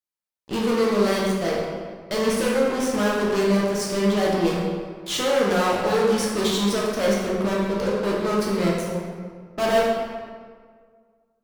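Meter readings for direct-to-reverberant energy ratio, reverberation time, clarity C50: -4.5 dB, 1.8 s, -0.5 dB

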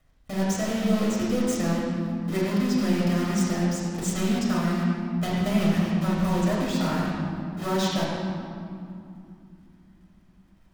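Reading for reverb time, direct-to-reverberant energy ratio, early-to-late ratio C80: 2.7 s, -5.5 dB, 0.0 dB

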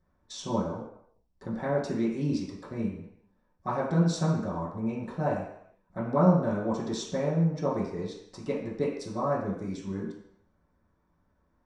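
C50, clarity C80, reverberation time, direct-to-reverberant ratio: 4.0 dB, 6.5 dB, 0.70 s, -8.5 dB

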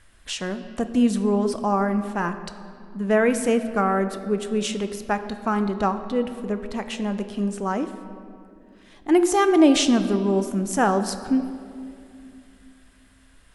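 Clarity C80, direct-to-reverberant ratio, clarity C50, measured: 11.5 dB, 9.0 dB, 10.5 dB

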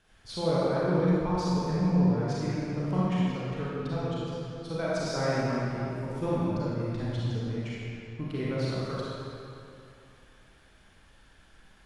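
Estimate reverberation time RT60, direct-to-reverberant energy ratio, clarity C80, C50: 2.7 s, -8.0 dB, -3.0 dB, -5.5 dB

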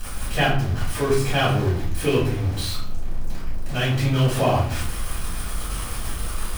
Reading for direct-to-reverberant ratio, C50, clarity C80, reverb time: -8.5 dB, 4.0 dB, 8.5 dB, 0.65 s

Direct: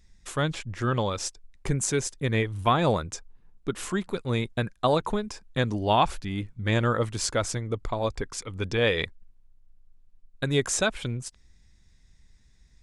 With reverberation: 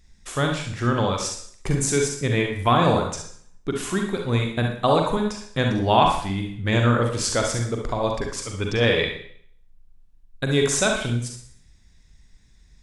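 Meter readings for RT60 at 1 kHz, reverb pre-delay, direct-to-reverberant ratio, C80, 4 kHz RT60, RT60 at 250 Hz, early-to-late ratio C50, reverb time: 0.60 s, 40 ms, 1.5 dB, 9.5 dB, 0.60 s, 0.60 s, 3.5 dB, 0.60 s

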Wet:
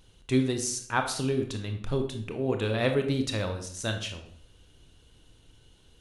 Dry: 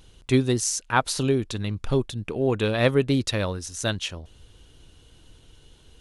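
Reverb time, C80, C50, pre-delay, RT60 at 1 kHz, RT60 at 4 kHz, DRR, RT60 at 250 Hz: 0.65 s, 12.0 dB, 8.5 dB, 21 ms, 0.60 s, 0.45 s, 5.0 dB, 0.75 s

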